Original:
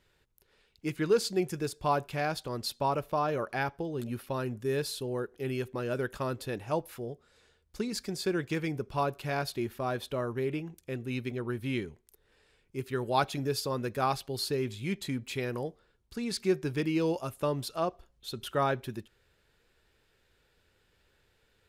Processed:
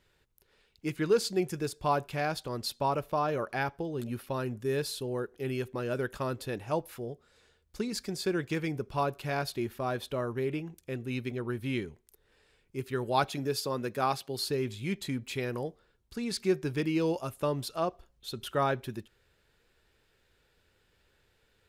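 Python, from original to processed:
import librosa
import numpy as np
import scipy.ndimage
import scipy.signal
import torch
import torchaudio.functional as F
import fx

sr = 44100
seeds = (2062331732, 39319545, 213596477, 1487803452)

y = fx.highpass(x, sr, hz=130.0, slope=12, at=(13.3, 14.45))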